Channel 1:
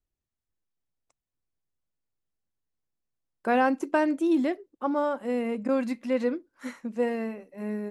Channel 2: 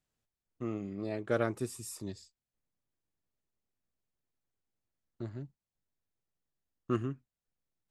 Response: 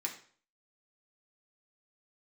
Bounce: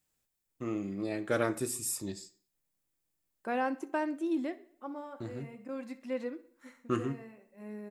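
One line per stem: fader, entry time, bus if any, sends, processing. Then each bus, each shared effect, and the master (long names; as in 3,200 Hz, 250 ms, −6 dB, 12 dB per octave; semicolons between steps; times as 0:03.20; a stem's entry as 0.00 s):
−10.0 dB, 0.00 s, send −12.5 dB, echo send −20 dB, automatic ducking −11 dB, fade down 0.75 s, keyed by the second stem
−1.0 dB, 0.00 s, send −3.5 dB, no echo send, high-shelf EQ 7,700 Hz +10.5 dB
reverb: on, RT60 0.50 s, pre-delay 3 ms
echo: repeating echo 64 ms, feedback 52%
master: no processing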